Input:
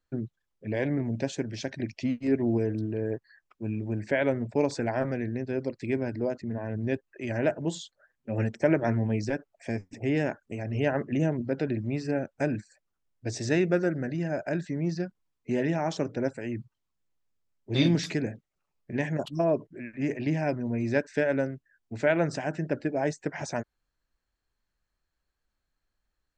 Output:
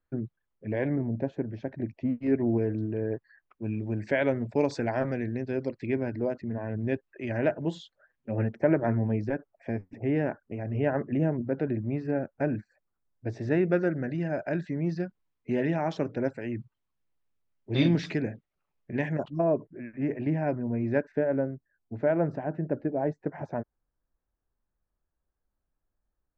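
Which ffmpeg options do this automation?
ffmpeg -i in.wav -af "asetnsamples=nb_out_samples=441:pad=0,asendcmd='0.96 lowpass f 1100;2.21 lowpass f 2400;3.64 lowpass f 5300;5.73 lowpass f 3100;8.31 lowpass f 1700;13.7 lowpass f 3300;19.24 lowpass f 1600;21.12 lowpass f 1000',lowpass=2100" out.wav

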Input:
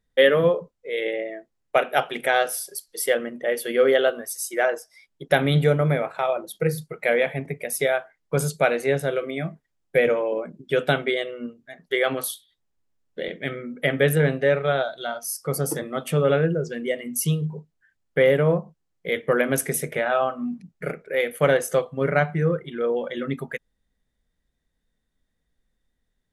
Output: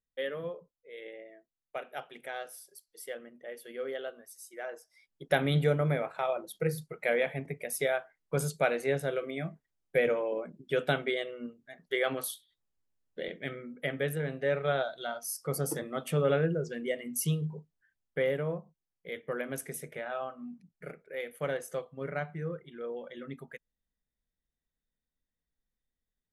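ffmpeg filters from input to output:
ffmpeg -i in.wav -af "afade=type=in:start_time=4.63:duration=0.67:silence=0.266073,afade=type=out:start_time=13.26:duration=0.99:silence=0.446684,afade=type=in:start_time=14.25:duration=0.43:silence=0.421697,afade=type=out:start_time=17.45:duration=1.11:silence=0.421697" out.wav

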